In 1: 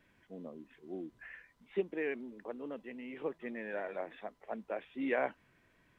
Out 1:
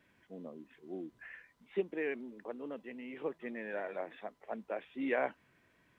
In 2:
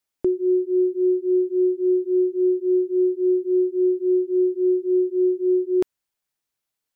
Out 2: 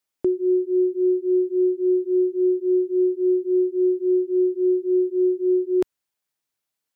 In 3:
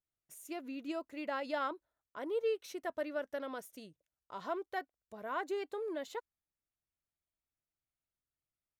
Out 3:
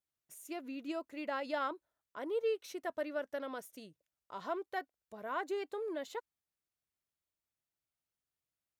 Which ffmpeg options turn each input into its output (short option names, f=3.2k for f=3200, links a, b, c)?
-af "highpass=f=77:p=1"